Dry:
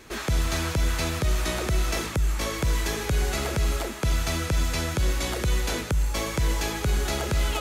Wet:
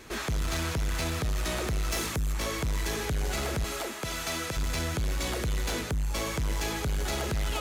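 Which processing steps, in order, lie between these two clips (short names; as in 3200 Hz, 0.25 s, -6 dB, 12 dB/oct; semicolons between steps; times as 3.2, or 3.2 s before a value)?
1.91–2.33 high shelf 5300 Hz +6.5 dB; 3.64–4.57 HPF 360 Hz 6 dB/oct; soft clip -25.5 dBFS, distortion -11 dB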